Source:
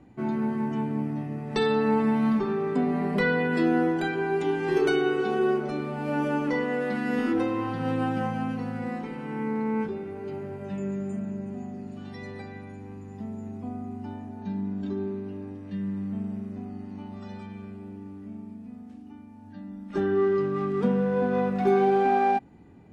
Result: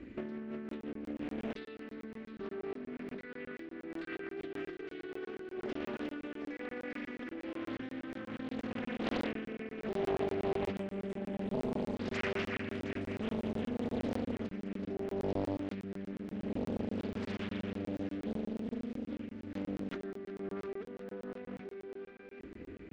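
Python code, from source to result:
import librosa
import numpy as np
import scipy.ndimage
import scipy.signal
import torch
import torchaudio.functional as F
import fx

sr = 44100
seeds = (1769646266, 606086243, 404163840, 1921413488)

y = fx.peak_eq(x, sr, hz=2100.0, db=5.5, octaves=1.5)
y = fx.over_compress(y, sr, threshold_db=-36.0, ratio=-1.0)
y = fx.air_absorb(y, sr, metres=140.0)
y = fx.fixed_phaser(y, sr, hz=340.0, stages=4)
y = fx.echo_heads(y, sr, ms=359, heads='first and second', feedback_pct=67, wet_db=-15)
y = fx.buffer_crackle(y, sr, first_s=0.69, period_s=0.12, block=1024, kind='zero')
y = fx.doppler_dist(y, sr, depth_ms=0.92)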